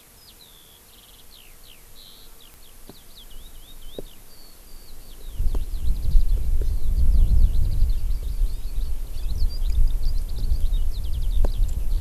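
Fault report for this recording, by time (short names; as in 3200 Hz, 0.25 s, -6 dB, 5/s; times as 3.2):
2.54 pop -28 dBFS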